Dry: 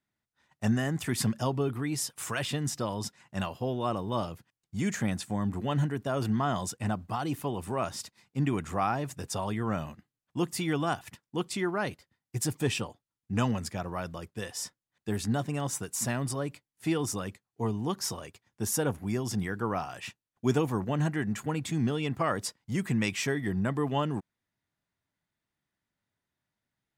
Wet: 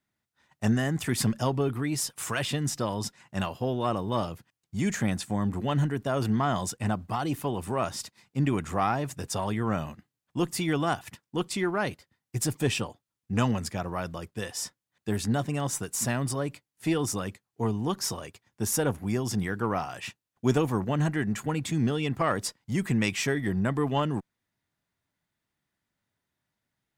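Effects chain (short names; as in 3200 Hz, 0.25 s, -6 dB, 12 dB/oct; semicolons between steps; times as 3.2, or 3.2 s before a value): one diode to ground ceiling -18 dBFS; gain +3 dB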